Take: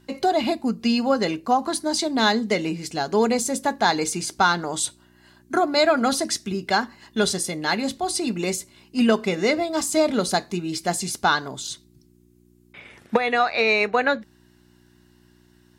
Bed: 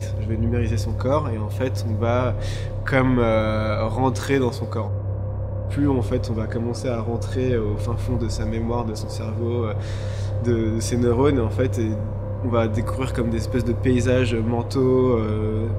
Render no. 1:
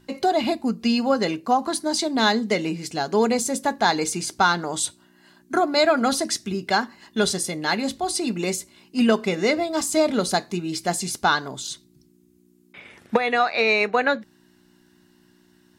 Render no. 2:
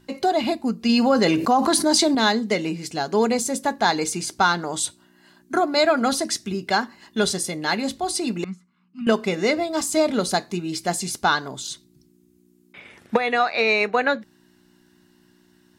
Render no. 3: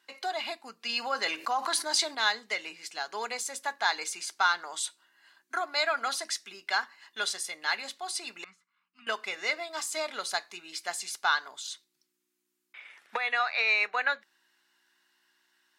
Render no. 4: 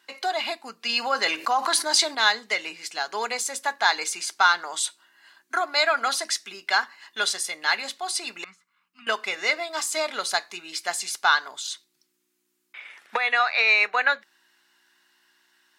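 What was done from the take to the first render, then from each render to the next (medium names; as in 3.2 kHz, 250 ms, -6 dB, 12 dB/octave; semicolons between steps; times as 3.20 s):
de-hum 60 Hz, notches 2
0.89–2.15 s: level flattener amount 70%; 8.44–9.07 s: two resonant band-passes 490 Hz, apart 2.7 oct
high-pass 1.4 kHz 12 dB/octave; treble shelf 3.4 kHz -9.5 dB
trim +6.5 dB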